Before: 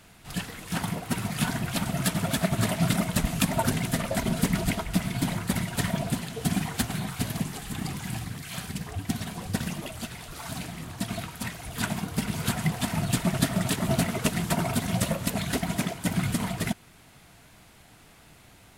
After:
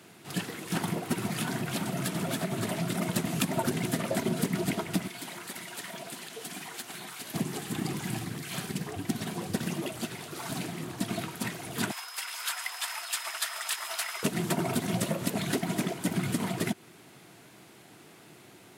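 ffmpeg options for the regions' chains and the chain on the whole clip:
-filter_complex "[0:a]asettb=1/sr,asplit=3[s0][s1][s2];[s0]atrim=end=1.354[s3];[s1]atrim=start=1.35:end=3.02,asetpts=PTS-STARTPTS,afade=t=in:d=0.004:c=qsin,afade=t=out:st=1.666:d=0.004:c=qsin,bandreject=f=50:t=h:w=6,bandreject=f=100:t=h:w=6,bandreject=f=150:t=h:w=6,bandreject=f=200:t=h:w=6,bandreject=f=250:t=h:w=6,bandreject=f=300:t=h:w=6,bandreject=f=350:t=h:w=6,bandreject=f=400:t=h:w=6,acompressor=threshold=0.0398:ratio=3:attack=3.2:release=140:knee=1:detection=peak[s4];[s2]atrim=start=3.016[s5];[s3][s4]acrossfade=d=0.004:c1=hsin:c2=qsin[s6];[s6][s5]acrossfade=d=0.004:c1=qsin:c2=hsin,asettb=1/sr,asplit=3[s7][s8][s9];[s7]atrim=end=5.074[s10];[s8]atrim=start=5.07:end=7.34,asetpts=PTS-STARTPTS,afade=t=in:d=0.004:c=qsin,afade=t=out:st=2.266:d=0.004:c=qsin,highpass=f=1200:p=1,acompressor=threshold=0.0112:ratio=2.5:attack=3.2:release=140:knee=1:detection=peak[s11];[s9]atrim=start=7.336[s12];[s10][s11]acrossfade=d=0.004:c1=hsin:c2=qsin[s13];[s13][s12]acrossfade=d=0.004:c1=qsin:c2=hsin,asettb=1/sr,asplit=3[s14][s15][s16];[s14]atrim=end=11.914[s17];[s15]atrim=start=11.91:end=14.23,asetpts=PTS-STARTPTS,afade=t=in:d=0.004:c=qsin,afade=t=out:st=2.316:d=0.004:c=qsin,highpass=f=1000:w=0.5412,highpass=f=1000:w=1.3066,aeval=exprs='val(0)+0.00562*sin(2*PI*5100*n/s)':c=same[s18];[s16]atrim=start=14.226[s19];[s17][s18]acrossfade=d=0.004:c1=hsin:c2=qsin[s20];[s20][s19]acrossfade=d=0.004:c1=qsin:c2=hsin,highpass=f=120:w=0.5412,highpass=f=120:w=1.3066,equalizer=f=360:t=o:w=0.56:g=10,acompressor=threshold=0.0501:ratio=3"

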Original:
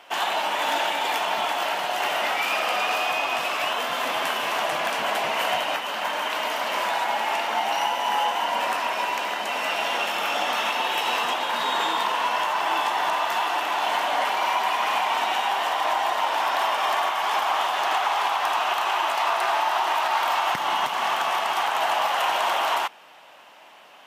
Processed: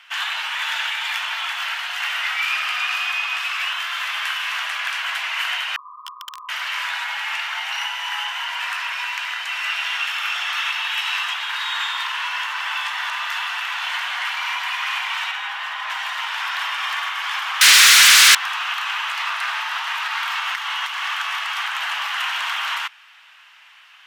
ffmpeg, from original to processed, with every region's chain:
-filter_complex "[0:a]asettb=1/sr,asplit=3[s0][s1][s2];[s0]atrim=end=5.764[s3];[s1]atrim=start=5.76:end=6.49,asetpts=PTS-STARTPTS,afade=t=in:d=0.004:c=qsin,afade=t=out:st=0.726:d=0.004:c=qsin,asuperpass=centerf=1100:order=20:qfactor=3.9,aeval=exprs='(mod(18.8*val(0)+1,2)-1)/18.8':c=same[s4];[s2]atrim=start=6.486[s5];[s3][s4]acrossfade=d=0.004:c1=hsin:c2=qsin[s6];[s6][s5]acrossfade=d=0.004:c1=qsin:c2=hsin,asettb=1/sr,asplit=3[s7][s8][s9];[s7]atrim=end=15.314[s10];[s8]atrim=start=15.31:end=15.9,asetpts=PTS-STARTPTS,afade=t=in:d=0.004:c=qsin,afade=t=out:st=0.586:d=0.004:c=qsin,highshelf=f=3200:g=-9.5,aecho=1:1:4.8:0.32,atrim=end_sample=26019[s11];[s9]atrim=start=15.896[s12];[s10][s11]acrossfade=d=0.004:c1=hsin:c2=qsin[s13];[s13][s12]acrossfade=d=0.004:c1=qsin:c2=hsin,asettb=1/sr,asplit=3[s14][s15][s16];[s14]atrim=end=17.614[s17];[s15]atrim=start=17.61:end=18.35,asetpts=PTS-STARTPTS,afade=t=in:d=0.004:c=qsin,afade=t=out:st=0.736:d=0.004:c=qsin,acontrast=84,aeval=exprs='0.447*sin(PI/2*8.91*val(0)/0.447)':c=same[s18];[s16]atrim=start=18.346[s19];[s17][s18]acrossfade=d=0.004:c1=hsin:c2=qsin[s20];[s20][s19]acrossfade=d=0.004:c1=qsin:c2=hsin,highpass=f=1400:w=0.5412,highpass=f=1400:w=1.3066,highshelf=f=6000:g=-11.5,acontrast=56"

